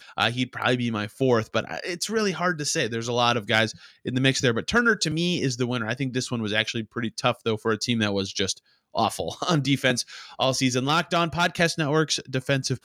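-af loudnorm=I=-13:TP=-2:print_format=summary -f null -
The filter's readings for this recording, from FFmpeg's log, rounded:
Input Integrated:    -24.4 LUFS
Input True Peak:      -5.2 dBTP
Input LRA:             2.2 LU
Input Threshold:     -34.5 LUFS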